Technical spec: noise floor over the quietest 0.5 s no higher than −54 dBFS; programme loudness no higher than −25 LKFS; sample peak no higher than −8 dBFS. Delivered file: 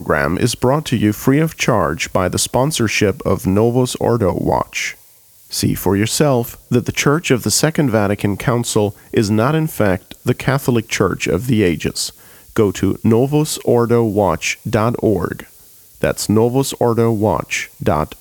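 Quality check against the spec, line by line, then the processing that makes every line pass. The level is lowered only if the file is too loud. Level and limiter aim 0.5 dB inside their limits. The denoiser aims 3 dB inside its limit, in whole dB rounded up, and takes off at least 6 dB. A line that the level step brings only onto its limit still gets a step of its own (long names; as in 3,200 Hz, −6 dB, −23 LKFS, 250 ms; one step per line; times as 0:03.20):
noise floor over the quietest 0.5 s −47 dBFS: out of spec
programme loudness −16.5 LKFS: out of spec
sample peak −1.5 dBFS: out of spec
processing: level −9 dB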